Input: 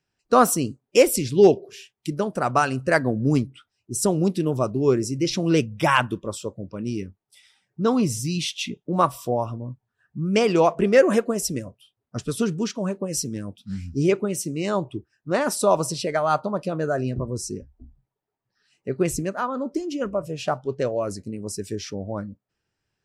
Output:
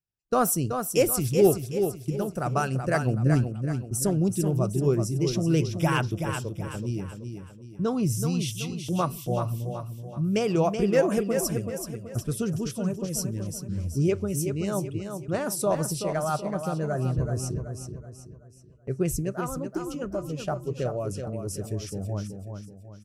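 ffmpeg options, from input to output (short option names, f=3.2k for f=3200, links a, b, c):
-af "agate=range=-14dB:threshold=-37dB:ratio=16:detection=peak,equalizer=f=250:t=o:w=1:g=-10,equalizer=f=500:t=o:w=1:g=-7,equalizer=f=1k:t=o:w=1:g=-11,equalizer=f=2k:t=o:w=1:g=-10,equalizer=f=4k:t=o:w=1:g=-11,equalizer=f=8k:t=o:w=1:g=-7,aecho=1:1:378|756|1134|1512|1890:0.447|0.183|0.0751|0.0308|0.0126,volume=5dB"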